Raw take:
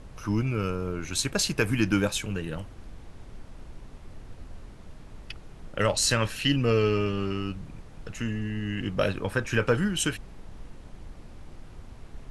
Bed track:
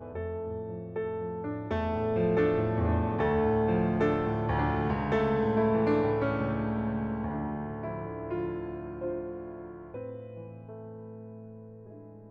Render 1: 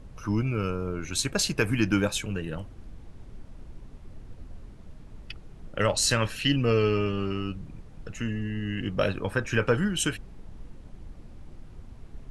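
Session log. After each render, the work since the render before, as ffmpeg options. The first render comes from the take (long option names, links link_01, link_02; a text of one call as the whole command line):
ffmpeg -i in.wav -af "afftdn=noise_reduction=6:noise_floor=-47" out.wav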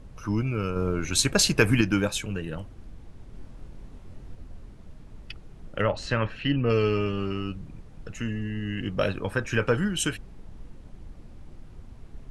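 ffmpeg -i in.wav -filter_complex "[0:a]asettb=1/sr,asplit=3[link_01][link_02][link_03];[link_01]atrim=end=3.314[link_04];[link_02]atrim=start=3.31:end=4.35,asetpts=PTS-STARTPTS,afade=type=in:duration=0.004:curve=qsin,afade=type=out:start_time=1.036:duration=0.004:curve=qsin,asplit=2[link_05][link_06];[link_06]adelay=24,volume=-3dB[link_07];[link_05][link_07]amix=inputs=2:normalize=0,atrim=end_sample=45864[link_08];[link_03]atrim=start=4.346[link_09];[link_04][link_08]acrossfade=duration=0.004:curve1=hsin:curve2=qsin[link_10];[link_10][link_09]acrossfade=duration=0.004:curve1=qsin:curve2=hsin,asettb=1/sr,asplit=3[link_11][link_12][link_13];[link_11]atrim=end=5.814[link_14];[link_12]atrim=start=5.81:end=6.7,asetpts=PTS-STARTPTS,afade=type=in:duration=0.004:curve=qsin,afade=type=out:start_time=0.886:duration=0.004:curve=qsin,lowpass=2300[link_15];[link_13]atrim=start=6.696[link_16];[link_14][link_15]acrossfade=duration=0.004:curve1=hsin:curve2=qsin[link_17];[link_17][link_16]acrossfade=duration=0.004:curve1=qsin:curve2=hsin,asplit=3[link_18][link_19][link_20];[link_18]atrim=end=0.762[link_21];[link_19]atrim=start=0.758:end=1.812,asetpts=PTS-STARTPTS,volume=5dB[link_22];[link_20]atrim=start=1.808[link_23];[link_21][link_22]acrossfade=duration=0.004:curve1=hsin:curve2=hsin[link_24];[link_24][link_23]acrossfade=duration=0.004:curve1=hsin:curve2=hsin" out.wav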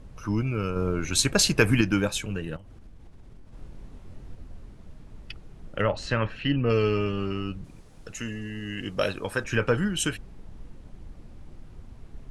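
ffmpeg -i in.wav -filter_complex "[0:a]asettb=1/sr,asplit=3[link_01][link_02][link_03];[link_01]atrim=end=2.564[link_04];[link_02]atrim=start=2.56:end=3.53,asetpts=PTS-STARTPTS,afade=type=in:duration=0.004:curve=qsin,afade=type=out:start_time=0.966:duration=0.004:curve=qsin,acompressor=threshold=-42dB:ratio=10:attack=3.2:release=140:knee=1:detection=peak[link_05];[link_03]atrim=start=3.526[link_06];[link_04][link_05]acrossfade=duration=0.004:curve1=hsin:curve2=qsin[link_07];[link_07][link_06]acrossfade=duration=0.004:curve1=qsin:curve2=hsin,asettb=1/sr,asplit=3[link_08][link_09][link_10];[link_08]atrim=end=7.644[link_11];[link_09]atrim=start=7.64:end=9.44,asetpts=PTS-STARTPTS,afade=type=in:duration=0.004:curve=qsin,afade=type=out:start_time=1.796:duration=0.004:curve=qsin,bass=frequency=250:gain=-6,treble=frequency=4000:gain=8[link_12];[link_10]atrim=start=9.436[link_13];[link_11][link_12]acrossfade=duration=0.004:curve1=hsin:curve2=qsin[link_14];[link_14][link_13]acrossfade=duration=0.004:curve1=qsin:curve2=hsin" out.wav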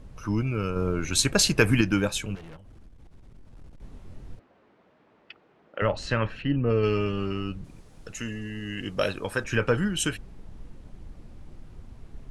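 ffmpeg -i in.wav -filter_complex "[0:a]asettb=1/sr,asplit=3[link_01][link_02][link_03];[link_01]atrim=end=2.354[link_04];[link_02]atrim=start=2.35:end=3.82,asetpts=PTS-STARTPTS,afade=type=in:duration=0.004:curve=qsin,afade=type=out:start_time=1.466:duration=0.004:curve=qsin,aeval=exprs='(tanh(126*val(0)+0.25)-tanh(0.25))/126':channel_layout=same[link_05];[link_03]atrim=start=3.816[link_06];[link_04][link_05]acrossfade=duration=0.004:curve1=hsin:curve2=qsin[link_07];[link_07][link_06]acrossfade=duration=0.004:curve1=qsin:curve2=hsin,asettb=1/sr,asplit=3[link_08][link_09][link_10];[link_08]atrim=end=4.394[link_11];[link_09]atrim=start=4.39:end=5.82,asetpts=PTS-STARTPTS,afade=type=in:duration=0.004:curve=qsin,afade=type=out:start_time=1.426:duration=0.004:curve=qsin,highpass=430,lowpass=2500[link_12];[link_10]atrim=start=5.816[link_13];[link_11][link_12]acrossfade=duration=0.004:curve1=hsin:curve2=qsin[link_14];[link_14][link_13]acrossfade=duration=0.004:curve1=qsin:curve2=hsin,asplit=3[link_15][link_16][link_17];[link_15]afade=type=out:start_time=6.41:duration=0.02[link_18];[link_16]lowpass=frequency=1100:poles=1,afade=type=in:start_time=6.41:duration=0.02,afade=type=out:start_time=6.82:duration=0.02[link_19];[link_17]afade=type=in:start_time=6.82:duration=0.02[link_20];[link_18][link_19][link_20]amix=inputs=3:normalize=0" out.wav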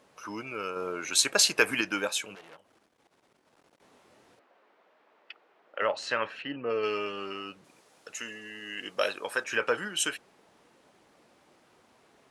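ffmpeg -i in.wav -af "highpass=530" out.wav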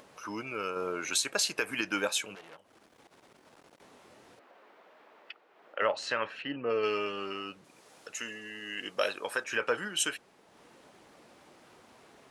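ffmpeg -i in.wav -af "acompressor=mode=upward:threshold=-50dB:ratio=2.5,alimiter=limit=-16.5dB:level=0:latency=1:release=370" out.wav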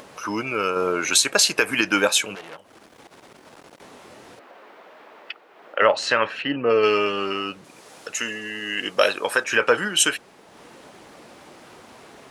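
ffmpeg -i in.wav -af "volume=11.5dB" out.wav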